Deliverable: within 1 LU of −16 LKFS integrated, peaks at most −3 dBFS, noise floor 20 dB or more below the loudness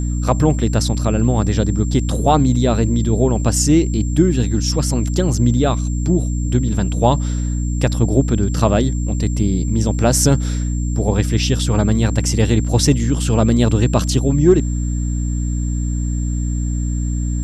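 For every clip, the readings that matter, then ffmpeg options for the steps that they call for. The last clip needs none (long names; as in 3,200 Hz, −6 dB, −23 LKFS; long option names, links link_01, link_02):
mains hum 60 Hz; hum harmonics up to 300 Hz; level of the hum −17 dBFS; interfering tone 7,400 Hz; level of the tone −35 dBFS; integrated loudness −17.5 LKFS; sample peak −1.0 dBFS; target loudness −16.0 LKFS
→ -af "bandreject=frequency=60:width_type=h:width=4,bandreject=frequency=120:width_type=h:width=4,bandreject=frequency=180:width_type=h:width=4,bandreject=frequency=240:width_type=h:width=4,bandreject=frequency=300:width_type=h:width=4"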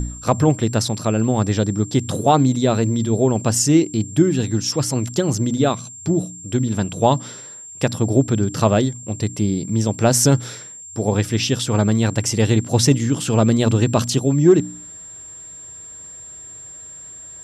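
mains hum none found; interfering tone 7,400 Hz; level of the tone −35 dBFS
→ -af "bandreject=frequency=7400:width=30"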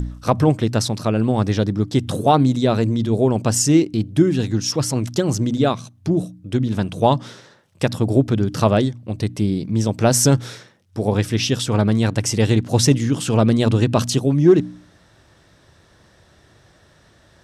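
interfering tone none found; integrated loudness −19.0 LKFS; sample peak −3.0 dBFS; target loudness −16.0 LKFS
→ -af "volume=3dB,alimiter=limit=-3dB:level=0:latency=1"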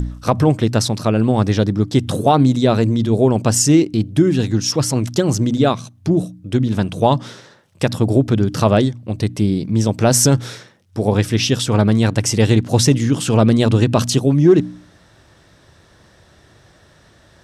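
integrated loudness −16.5 LKFS; sample peak −3.0 dBFS; background noise floor −51 dBFS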